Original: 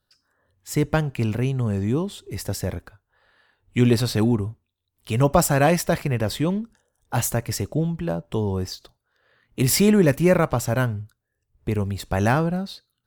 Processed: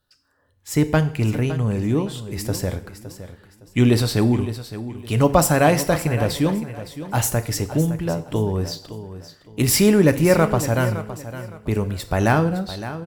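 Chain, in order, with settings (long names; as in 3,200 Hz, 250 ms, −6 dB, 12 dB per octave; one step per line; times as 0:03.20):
repeating echo 563 ms, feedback 28%, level −13 dB
feedback delay network reverb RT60 0.62 s, low-frequency decay 0.85×, high-frequency decay 1×, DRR 10 dB
level +2 dB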